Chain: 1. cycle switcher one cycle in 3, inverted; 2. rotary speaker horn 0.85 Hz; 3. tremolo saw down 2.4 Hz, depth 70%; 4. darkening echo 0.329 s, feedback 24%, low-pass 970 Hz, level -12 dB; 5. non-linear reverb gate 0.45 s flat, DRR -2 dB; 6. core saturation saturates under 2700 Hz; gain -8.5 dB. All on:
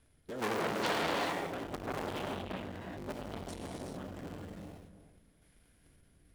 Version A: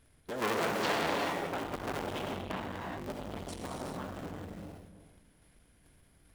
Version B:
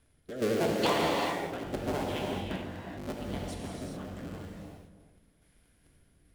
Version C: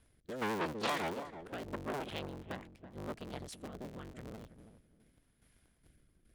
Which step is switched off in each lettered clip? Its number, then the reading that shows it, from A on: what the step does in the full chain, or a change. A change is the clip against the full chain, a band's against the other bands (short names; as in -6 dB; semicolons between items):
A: 2, loudness change +2.0 LU; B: 6, crest factor change -3.0 dB; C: 5, loudness change -3.5 LU